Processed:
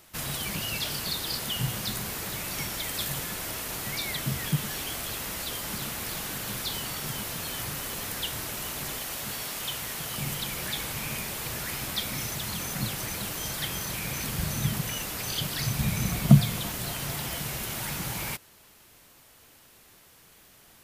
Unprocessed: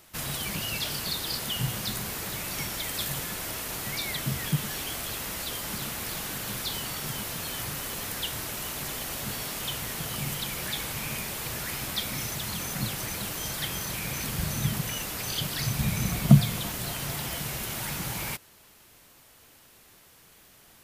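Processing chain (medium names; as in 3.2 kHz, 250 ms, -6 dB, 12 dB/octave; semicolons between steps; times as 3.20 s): 8.98–10.18 s: bass shelf 390 Hz -5.5 dB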